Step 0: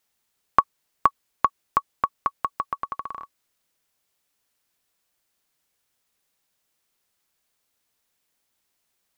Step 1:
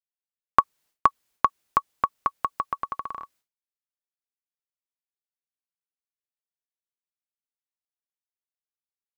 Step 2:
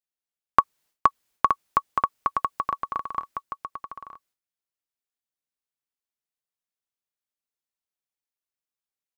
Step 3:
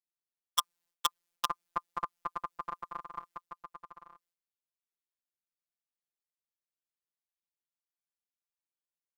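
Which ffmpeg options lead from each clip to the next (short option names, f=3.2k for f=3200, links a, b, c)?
-af "agate=range=-33dB:threshold=-54dB:ratio=3:detection=peak"
-af "aecho=1:1:921:0.473"
-af "aeval=exprs='(mod(1.88*val(0)+1,2)-1)/1.88':c=same,afftfilt=real='hypot(re,im)*cos(PI*b)':imag='0':win_size=1024:overlap=0.75,volume=-6dB"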